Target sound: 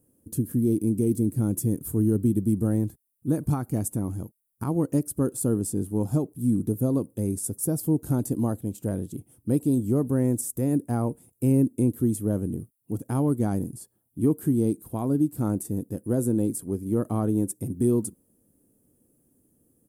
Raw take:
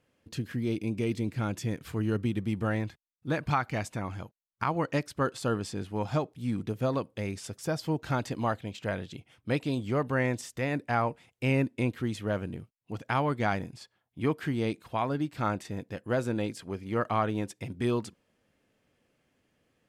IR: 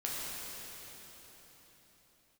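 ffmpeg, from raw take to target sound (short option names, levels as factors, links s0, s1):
-filter_complex "[0:a]firequalizer=gain_entry='entry(150,0);entry(290,4);entry(610,-10);entry(2100,-27);entry(4200,-19);entry(9600,14)':delay=0.05:min_phase=1,asplit=2[s0][s1];[s1]alimiter=limit=0.0841:level=0:latency=1:release=176,volume=0.794[s2];[s0][s2]amix=inputs=2:normalize=0,volume=1.19"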